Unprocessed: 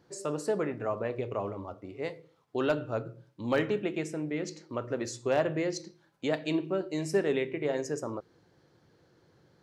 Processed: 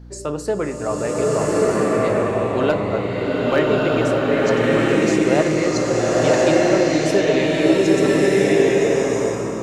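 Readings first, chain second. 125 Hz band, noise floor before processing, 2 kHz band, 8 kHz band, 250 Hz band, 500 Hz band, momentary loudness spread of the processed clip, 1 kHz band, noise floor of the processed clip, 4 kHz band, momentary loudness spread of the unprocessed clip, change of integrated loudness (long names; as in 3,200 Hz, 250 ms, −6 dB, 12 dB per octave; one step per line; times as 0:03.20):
+14.5 dB, −66 dBFS, +15.5 dB, +15.5 dB, +15.5 dB, +15.0 dB, 7 LU, +15.0 dB, −26 dBFS, +15.5 dB, 11 LU, +14.5 dB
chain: mains hum 60 Hz, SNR 14 dB
slow-attack reverb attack 1,310 ms, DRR −7 dB
level +7.5 dB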